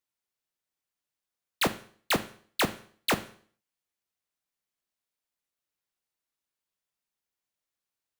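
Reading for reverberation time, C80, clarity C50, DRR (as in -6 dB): 0.50 s, 19.0 dB, 15.0 dB, 8.5 dB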